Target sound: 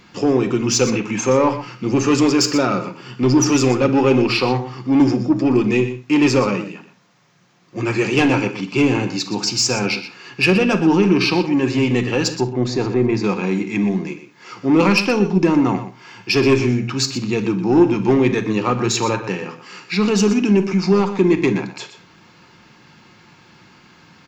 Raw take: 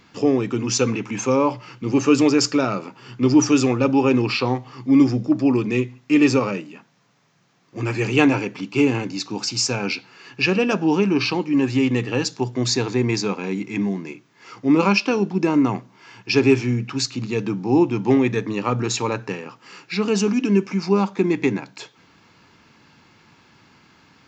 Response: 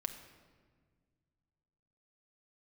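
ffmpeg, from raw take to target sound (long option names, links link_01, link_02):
-filter_complex "[0:a]asettb=1/sr,asplit=3[link_01][link_02][link_03];[link_01]atrim=end=12.414[link_04];[link_02]atrim=start=12.41:end=13.24,asetpts=PTS-STARTPTS,afade=type=in:duration=0.004:curve=qsin,afade=type=out:start_time=0.826:duration=0.004:curve=qsin,lowpass=frequency=1100:poles=1[link_05];[link_03]atrim=start=13.236[link_06];[link_04][link_05]acrossfade=duration=0.004:curve1=hsin:curve2=qsin[link_07];[link_07][link_06]acrossfade=duration=0.004:curve1=qsin:curve2=hsin,asoftclip=type=tanh:threshold=-11dB,aecho=1:1:122:0.251[link_08];[1:a]atrim=start_sample=2205,atrim=end_sample=3528[link_09];[link_08][link_09]afir=irnorm=-1:irlink=0,volume=5.5dB"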